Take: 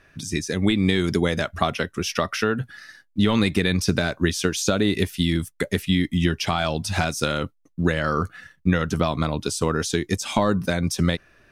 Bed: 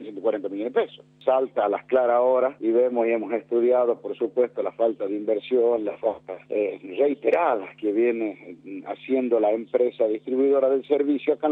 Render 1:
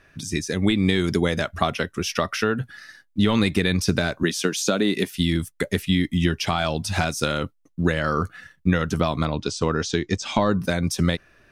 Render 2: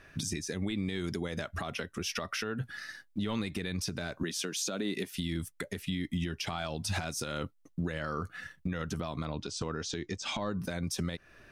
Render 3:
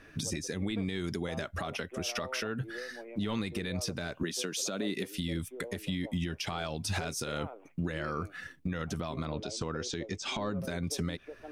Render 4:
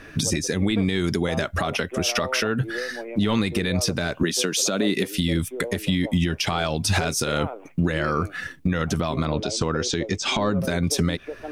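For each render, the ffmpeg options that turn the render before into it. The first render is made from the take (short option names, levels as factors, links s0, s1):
-filter_complex "[0:a]asettb=1/sr,asplit=3[s0][s1][s2];[s0]atrim=end=4.234[s3];[s1]atrim=start=4.23:end=5.15,asetpts=PTS-STARTPTS,afade=t=in:d=0.004:c=qsin,afade=t=out:st=0.916:d=0.004:c=qsin,highpass=f=160:w=0.5412,highpass=f=160:w=1.3066[s4];[s2]atrim=start=5.146[s5];[s3][s4]acrossfade=d=0.004:c1=hsin:c2=qsin[s6];[s6][s5]acrossfade=d=0.004:c1=qsin:c2=hsin,asettb=1/sr,asplit=3[s7][s8][s9];[s7]atrim=end=9.254[s10];[s8]atrim=start=9.25:end=10.59,asetpts=PTS-STARTPTS,afade=t=in:d=0.004:c=qsin,afade=t=out:st=1.336:d=0.004:c=qsin,lowpass=f=6500:w=0.5412,lowpass=f=6500:w=1.3066[s11];[s9]atrim=start=10.586[s12];[s10][s11]acrossfade=d=0.004:c1=hsin:c2=qsin[s13];[s13][s12]acrossfade=d=0.004:c1=qsin:c2=hsin"
-af "acompressor=threshold=0.0355:ratio=2.5,alimiter=limit=0.0668:level=0:latency=1:release=154"
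-filter_complex "[1:a]volume=0.0596[s0];[0:a][s0]amix=inputs=2:normalize=0"
-af "volume=3.76"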